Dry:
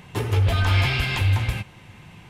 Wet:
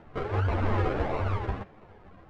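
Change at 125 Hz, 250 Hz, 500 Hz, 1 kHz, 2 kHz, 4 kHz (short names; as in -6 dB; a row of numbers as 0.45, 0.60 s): -9.5, -1.0, +1.5, -1.0, -12.0, -20.0 dB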